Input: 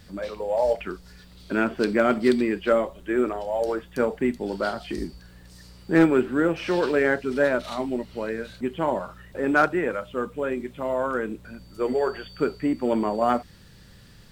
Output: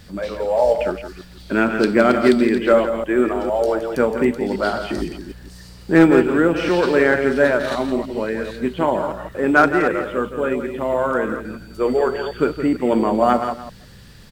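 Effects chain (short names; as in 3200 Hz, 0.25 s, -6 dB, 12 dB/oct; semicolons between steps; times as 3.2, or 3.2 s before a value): reverse delay 0.152 s, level -9 dB; echo 0.168 s -10 dB; gain +5.5 dB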